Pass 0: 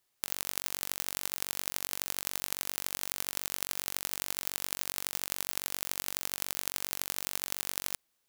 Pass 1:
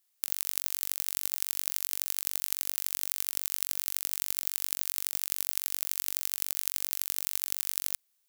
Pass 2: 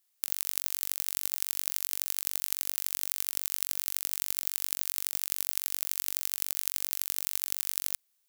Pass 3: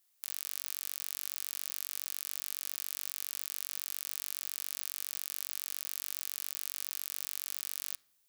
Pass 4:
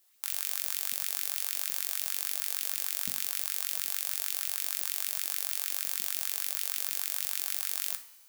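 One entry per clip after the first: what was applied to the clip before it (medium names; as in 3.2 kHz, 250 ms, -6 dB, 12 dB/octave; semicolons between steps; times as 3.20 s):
tilt EQ +3 dB/octave; trim -7 dB
no audible change
peak limiter -13 dBFS, peak gain reduction 11.5 dB; reverberation RT60 0.75 s, pre-delay 7 ms, DRR 15.5 dB; trim +1.5 dB
LFO high-pass saw up 6.5 Hz 220–2800 Hz; two-slope reverb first 0.4 s, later 2.1 s, from -17 dB, DRR 6 dB; trim +5 dB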